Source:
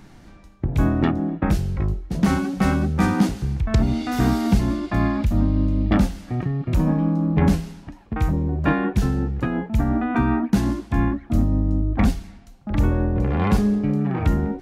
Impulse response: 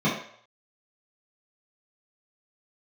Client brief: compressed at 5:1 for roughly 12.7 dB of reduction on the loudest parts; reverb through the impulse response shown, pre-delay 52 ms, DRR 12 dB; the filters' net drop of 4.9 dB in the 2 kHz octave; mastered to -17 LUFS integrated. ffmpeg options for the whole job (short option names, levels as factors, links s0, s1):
-filter_complex "[0:a]equalizer=f=2000:t=o:g=-6.5,acompressor=threshold=0.0398:ratio=5,asplit=2[s0][s1];[1:a]atrim=start_sample=2205,adelay=52[s2];[s1][s2]afir=irnorm=-1:irlink=0,volume=0.0473[s3];[s0][s3]amix=inputs=2:normalize=0,volume=5.01"